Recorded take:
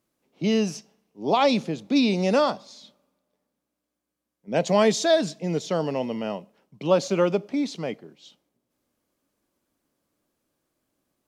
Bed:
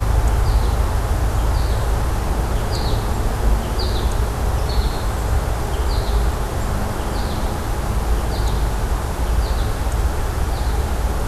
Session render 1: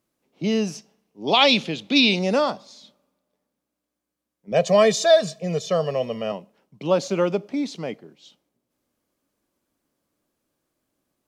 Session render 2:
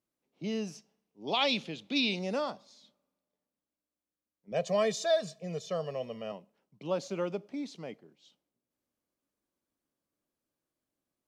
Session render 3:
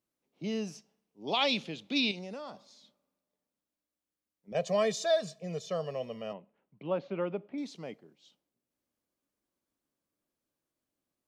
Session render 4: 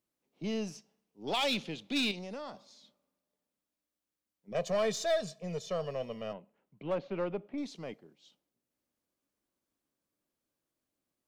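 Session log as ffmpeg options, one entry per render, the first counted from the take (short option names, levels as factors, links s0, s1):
-filter_complex "[0:a]asettb=1/sr,asplit=3[s0][s1][s2];[s0]atrim=end=1.274[s3];[s1]atrim=start=1.27:end=2.19,asetpts=PTS-STARTPTS,afade=t=in:d=0.004:c=qsin,afade=t=out:st=0.916:d=0.004:c=qsin,equalizer=f=3100:t=o:w=1.3:g=14.5[s4];[s2]atrim=start=2.186[s5];[s3][s4]acrossfade=d=0.004:c1=hsin:c2=qsin[s6];[s6][s5]acrossfade=d=0.004:c1=qsin:c2=hsin,asettb=1/sr,asplit=3[s7][s8][s9];[s7]atrim=end=4.524[s10];[s8]atrim=start=4.52:end=6.32,asetpts=PTS-STARTPTS,afade=t=in:d=0.004:c=qsin,afade=t=out:st=1.796:d=0.004:c=qsin,aecho=1:1:1.7:0.86,atrim=end_sample=79380[s11];[s9]atrim=start=6.316[s12];[s10][s11]acrossfade=d=0.004:c1=hsin:c2=qsin[s13];[s13][s12]acrossfade=d=0.004:c1=qsin:c2=hsin"
-af "volume=0.251"
-filter_complex "[0:a]asettb=1/sr,asplit=3[s0][s1][s2];[s0]atrim=end=2.114[s3];[s1]atrim=start=2.11:end=4.55,asetpts=PTS-STARTPTS,afade=t=in:d=0.004:c=qsin,afade=t=out:st=2.436:d=0.004:c=qsin,acompressor=threshold=0.0126:ratio=6:attack=3.2:release=140:knee=1:detection=peak[s4];[s2]atrim=start=4.546[s5];[s3][s4]acrossfade=d=0.004:c1=hsin:c2=qsin[s6];[s6][s5]acrossfade=d=0.004:c1=qsin:c2=hsin,asettb=1/sr,asplit=3[s7][s8][s9];[s7]atrim=end=6.334[s10];[s8]atrim=start=6.33:end=7.58,asetpts=PTS-STARTPTS,afade=t=in:d=0.004:c=qsin,afade=t=out:st=1.246:d=0.004:c=qsin,lowpass=f=2900:w=0.5412,lowpass=f=2900:w=1.3066[s11];[s9]atrim=start=7.576[s12];[s10][s11]acrossfade=d=0.004:c1=hsin:c2=qsin[s13];[s13][s12]acrossfade=d=0.004:c1=qsin:c2=hsin"
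-af "asoftclip=type=tanh:threshold=0.0708,aeval=exprs='0.0708*(cos(1*acos(clip(val(0)/0.0708,-1,1)))-cos(1*PI/2))+0.00501*(cos(4*acos(clip(val(0)/0.0708,-1,1)))-cos(4*PI/2))+0.00398*(cos(6*acos(clip(val(0)/0.0708,-1,1)))-cos(6*PI/2))+0.00316*(cos(8*acos(clip(val(0)/0.0708,-1,1)))-cos(8*PI/2))':c=same"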